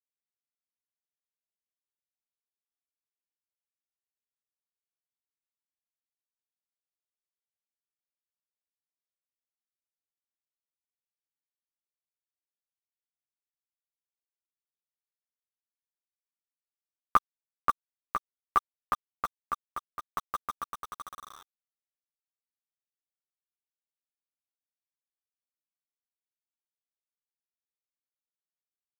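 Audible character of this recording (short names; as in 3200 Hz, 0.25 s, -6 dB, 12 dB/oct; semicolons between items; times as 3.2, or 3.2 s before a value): a quantiser's noise floor 6-bit, dither none; tremolo saw down 0.65 Hz, depth 65%; a shimmering, thickened sound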